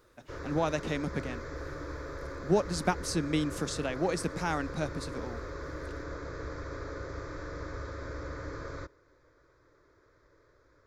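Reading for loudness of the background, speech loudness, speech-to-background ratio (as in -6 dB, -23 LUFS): -41.0 LUFS, -32.5 LUFS, 8.5 dB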